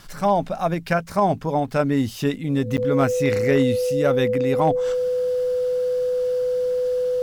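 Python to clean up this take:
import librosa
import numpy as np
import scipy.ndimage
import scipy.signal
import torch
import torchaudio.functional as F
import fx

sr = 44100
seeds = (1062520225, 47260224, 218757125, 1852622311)

y = fx.fix_declip(x, sr, threshold_db=-10.0)
y = fx.notch(y, sr, hz=500.0, q=30.0)
y = fx.fix_interpolate(y, sr, at_s=(2.77,), length_ms=8.7)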